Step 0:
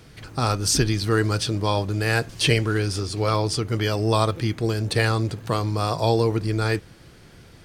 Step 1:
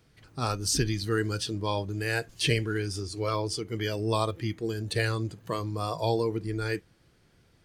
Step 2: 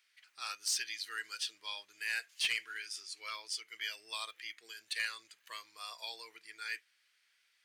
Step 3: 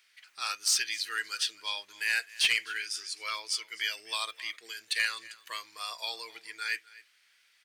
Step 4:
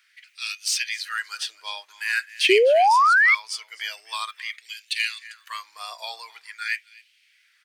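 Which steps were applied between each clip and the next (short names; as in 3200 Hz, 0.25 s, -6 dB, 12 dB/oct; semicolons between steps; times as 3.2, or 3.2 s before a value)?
spectral noise reduction 9 dB; gain -6 dB
resonant high-pass 2100 Hz, resonance Q 1.7; soft clip -19 dBFS, distortion -17 dB; gain -5 dB
echo 0.256 s -20.5 dB; gain +7.5 dB
LFO high-pass sine 0.46 Hz 670–2700 Hz; painted sound rise, 2.49–3.35, 360–2300 Hz -16 dBFS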